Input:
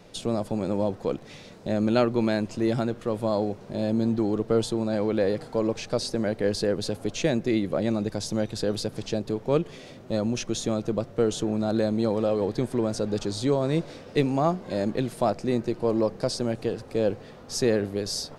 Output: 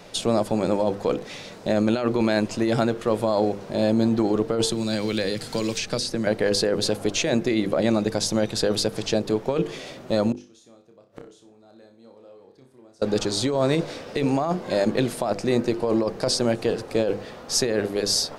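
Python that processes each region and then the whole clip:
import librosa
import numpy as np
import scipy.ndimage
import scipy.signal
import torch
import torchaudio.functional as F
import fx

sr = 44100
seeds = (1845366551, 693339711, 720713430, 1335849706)

y = fx.chain(x, sr, fx.peak_eq(hz=720.0, db=-11.5, octaves=2.3),
    fx.band_squash(depth_pct=100), at=(4.69, 6.27))
y = fx.chain(y, sr, fx.highpass(hz=44.0, slope=12),
    fx.gate_flip(shuts_db=-31.0, range_db=-32),
    fx.room_flutter(wall_m=5.2, rt60_s=0.34), at=(10.32, 13.02))
y = fx.low_shelf(y, sr, hz=280.0, db=-7.0)
y = fx.hum_notches(y, sr, base_hz=50, count=10)
y = fx.over_compress(y, sr, threshold_db=-28.0, ratio=-1.0)
y = F.gain(torch.from_numpy(y), 7.5).numpy()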